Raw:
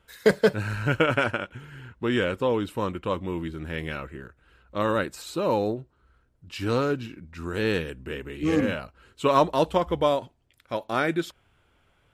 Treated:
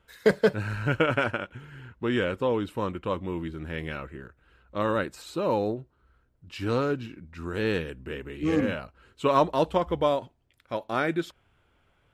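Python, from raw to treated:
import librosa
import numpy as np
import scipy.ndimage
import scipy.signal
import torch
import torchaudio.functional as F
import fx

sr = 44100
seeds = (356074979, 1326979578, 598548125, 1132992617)

y = fx.high_shelf(x, sr, hz=4600.0, db=-5.5)
y = y * librosa.db_to_amplitude(-1.5)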